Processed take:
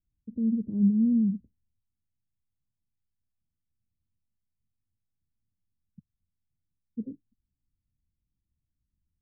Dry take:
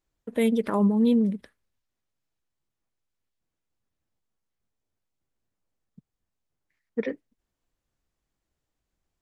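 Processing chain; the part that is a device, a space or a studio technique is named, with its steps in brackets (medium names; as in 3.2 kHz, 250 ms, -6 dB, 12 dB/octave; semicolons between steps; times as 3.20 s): the neighbour's flat through the wall (low-pass 240 Hz 24 dB/octave; peaking EQ 88 Hz +6 dB 0.85 oct)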